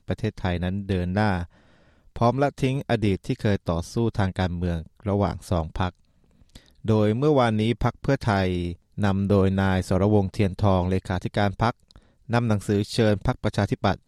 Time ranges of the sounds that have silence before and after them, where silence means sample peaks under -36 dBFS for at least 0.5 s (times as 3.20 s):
2.16–5.90 s